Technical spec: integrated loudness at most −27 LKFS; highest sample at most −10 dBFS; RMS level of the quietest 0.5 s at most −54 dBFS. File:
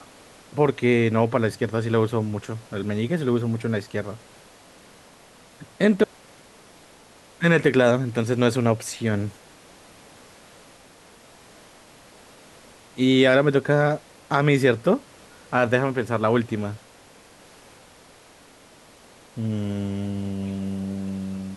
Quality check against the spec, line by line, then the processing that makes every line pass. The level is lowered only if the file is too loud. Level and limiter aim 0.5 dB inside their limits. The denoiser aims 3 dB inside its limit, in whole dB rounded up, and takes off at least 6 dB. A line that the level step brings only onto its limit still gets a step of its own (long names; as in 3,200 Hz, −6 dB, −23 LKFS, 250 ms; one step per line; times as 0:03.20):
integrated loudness −23.0 LKFS: out of spec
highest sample −5.5 dBFS: out of spec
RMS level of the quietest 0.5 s −51 dBFS: out of spec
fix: level −4.5 dB
brickwall limiter −10.5 dBFS